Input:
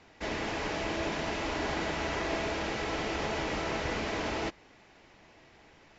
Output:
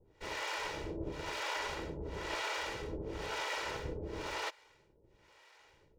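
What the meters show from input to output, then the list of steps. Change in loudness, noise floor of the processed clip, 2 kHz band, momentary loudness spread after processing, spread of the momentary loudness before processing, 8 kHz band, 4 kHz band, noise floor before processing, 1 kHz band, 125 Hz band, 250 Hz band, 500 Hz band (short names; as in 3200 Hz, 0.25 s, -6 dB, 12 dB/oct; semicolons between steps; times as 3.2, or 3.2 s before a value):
-6.0 dB, -68 dBFS, -5.0 dB, 5 LU, 2 LU, n/a, -4.0 dB, -59 dBFS, -5.5 dB, -6.0 dB, -10.0 dB, -7.5 dB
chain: minimum comb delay 2.1 ms; harmonic tremolo 1 Hz, depth 100%, crossover 510 Hz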